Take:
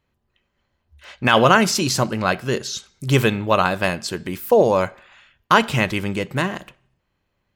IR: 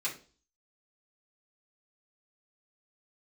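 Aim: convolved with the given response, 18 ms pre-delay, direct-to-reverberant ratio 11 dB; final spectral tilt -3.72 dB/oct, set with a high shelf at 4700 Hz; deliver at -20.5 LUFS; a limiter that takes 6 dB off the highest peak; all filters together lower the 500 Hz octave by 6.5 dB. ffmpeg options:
-filter_complex "[0:a]equalizer=f=500:t=o:g=-8,highshelf=f=4.7k:g=4.5,alimiter=limit=-8dB:level=0:latency=1,asplit=2[a][b];[1:a]atrim=start_sample=2205,adelay=18[c];[b][c]afir=irnorm=-1:irlink=0,volume=-15.5dB[d];[a][d]amix=inputs=2:normalize=0,volume=1.5dB"

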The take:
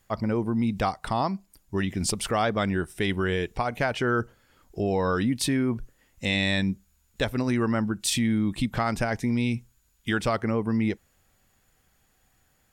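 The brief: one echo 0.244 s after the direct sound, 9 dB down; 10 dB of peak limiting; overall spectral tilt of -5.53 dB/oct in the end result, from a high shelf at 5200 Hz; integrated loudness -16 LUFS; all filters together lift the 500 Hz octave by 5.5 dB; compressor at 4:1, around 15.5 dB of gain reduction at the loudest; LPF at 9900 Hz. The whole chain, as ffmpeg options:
-af "lowpass=9.9k,equalizer=f=500:t=o:g=7,highshelf=f=5.2k:g=-9,acompressor=threshold=-37dB:ratio=4,alimiter=level_in=8.5dB:limit=-24dB:level=0:latency=1,volume=-8.5dB,aecho=1:1:244:0.355,volume=26.5dB"

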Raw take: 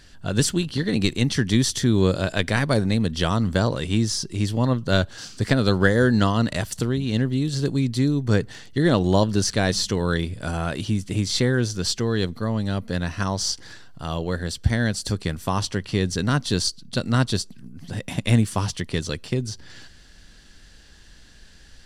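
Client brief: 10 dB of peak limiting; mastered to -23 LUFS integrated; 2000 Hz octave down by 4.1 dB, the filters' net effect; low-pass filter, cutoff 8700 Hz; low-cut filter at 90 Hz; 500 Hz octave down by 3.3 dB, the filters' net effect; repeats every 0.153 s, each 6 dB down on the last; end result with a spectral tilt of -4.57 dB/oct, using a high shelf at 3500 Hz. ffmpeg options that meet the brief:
-af "highpass=90,lowpass=8.7k,equalizer=f=500:t=o:g=-4,equalizer=f=2k:t=o:g=-6.5,highshelf=f=3.5k:g=4.5,alimiter=limit=-14dB:level=0:latency=1,aecho=1:1:153|306|459|612|765|918:0.501|0.251|0.125|0.0626|0.0313|0.0157,volume=2.5dB"

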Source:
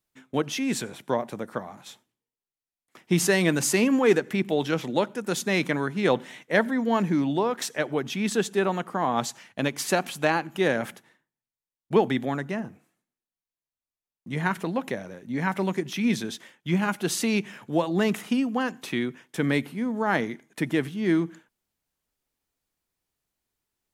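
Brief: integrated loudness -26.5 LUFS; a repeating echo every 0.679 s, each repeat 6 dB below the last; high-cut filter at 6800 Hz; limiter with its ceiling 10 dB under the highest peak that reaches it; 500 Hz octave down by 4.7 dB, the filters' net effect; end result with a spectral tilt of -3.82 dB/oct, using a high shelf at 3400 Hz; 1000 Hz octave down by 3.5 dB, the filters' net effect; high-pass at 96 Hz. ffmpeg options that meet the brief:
-af "highpass=96,lowpass=6.8k,equalizer=f=500:t=o:g=-5.5,equalizer=f=1k:t=o:g=-3.5,highshelf=f=3.4k:g=9,alimiter=limit=-17.5dB:level=0:latency=1,aecho=1:1:679|1358|2037|2716|3395|4074:0.501|0.251|0.125|0.0626|0.0313|0.0157,volume=2.5dB"

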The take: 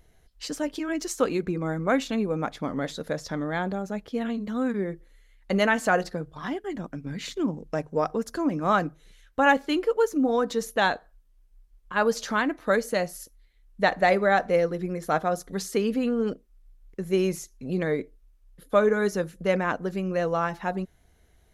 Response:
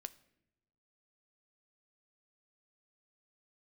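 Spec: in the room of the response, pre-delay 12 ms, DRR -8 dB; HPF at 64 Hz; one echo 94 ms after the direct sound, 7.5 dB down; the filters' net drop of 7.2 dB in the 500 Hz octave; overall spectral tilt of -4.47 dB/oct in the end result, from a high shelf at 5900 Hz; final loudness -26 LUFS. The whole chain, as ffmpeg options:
-filter_complex "[0:a]highpass=64,equalizer=f=500:t=o:g=-9,highshelf=f=5.9k:g=5,aecho=1:1:94:0.422,asplit=2[a][b];[1:a]atrim=start_sample=2205,adelay=12[c];[b][c]afir=irnorm=-1:irlink=0,volume=12.5dB[d];[a][d]amix=inputs=2:normalize=0,volume=-6dB"

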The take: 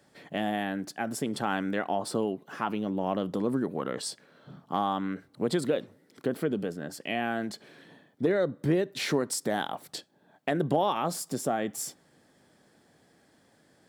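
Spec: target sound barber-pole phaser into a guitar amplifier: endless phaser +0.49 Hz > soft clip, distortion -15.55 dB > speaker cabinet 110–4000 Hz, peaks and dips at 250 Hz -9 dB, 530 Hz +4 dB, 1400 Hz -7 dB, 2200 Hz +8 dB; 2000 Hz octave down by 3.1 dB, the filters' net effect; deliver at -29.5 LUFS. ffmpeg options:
-filter_complex "[0:a]equalizer=f=2k:t=o:g=-5,asplit=2[a][b];[b]afreqshift=0.49[c];[a][c]amix=inputs=2:normalize=1,asoftclip=threshold=-24dB,highpass=110,equalizer=f=250:t=q:w=4:g=-9,equalizer=f=530:t=q:w=4:g=4,equalizer=f=1.4k:t=q:w=4:g=-7,equalizer=f=2.2k:t=q:w=4:g=8,lowpass=f=4k:w=0.5412,lowpass=f=4k:w=1.3066,volume=6.5dB"

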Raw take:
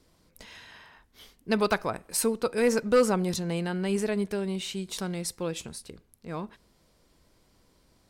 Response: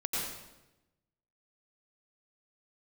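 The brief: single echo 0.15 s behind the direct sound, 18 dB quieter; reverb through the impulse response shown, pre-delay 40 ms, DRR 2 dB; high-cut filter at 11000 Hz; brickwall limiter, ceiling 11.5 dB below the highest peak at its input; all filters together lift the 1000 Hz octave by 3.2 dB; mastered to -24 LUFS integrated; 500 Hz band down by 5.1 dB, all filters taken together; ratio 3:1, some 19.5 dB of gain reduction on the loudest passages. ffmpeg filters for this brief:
-filter_complex "[0:a]lowpass=11k,equalizer=f=500:t=o:g=-7,equalizer=f=1k:t=o:g=6,acompressor=threshold=-48dB:ratio=3,alimiter=level_in=16dB:limit=-24dB:level=0:latency=1,volume=-16dB,aecho=1:1:150:0.126,asplit=2[a][b];[1:a]atrim=start_sample=2205,adelay=40[c];[b][c]afir=irnorm=-1:irlink=0,volume=-7.5dB[d];[a][d]amix=inputs=2:normalize=0,volume=23.5dB"

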